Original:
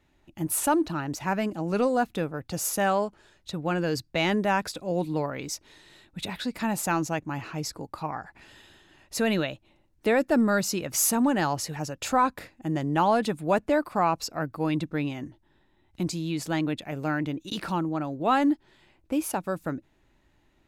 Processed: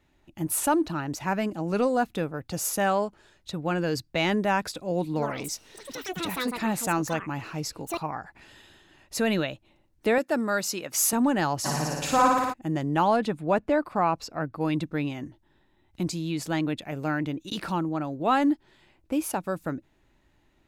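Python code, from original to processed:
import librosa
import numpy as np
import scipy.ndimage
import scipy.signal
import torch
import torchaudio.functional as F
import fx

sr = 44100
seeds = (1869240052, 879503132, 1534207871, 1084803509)

y = fx.echo_pitch(x, sr, ms=97, semitones=7, count=2, db_per_echo=-6.0, at=(5.06, 9.28))
y = fx.highpass(y, sr, hz=440.0, slope=6, at=(10.18, 11.13))
y = fx.room_flutter(y, sr, wall_m=9.8, rt60_s=1.4, at=(11.64, 12.52), fade=0.02)
y = fx.high_shelf(y, sr, hz=5600.0, db=-11.5, at=(13.16, 14.61))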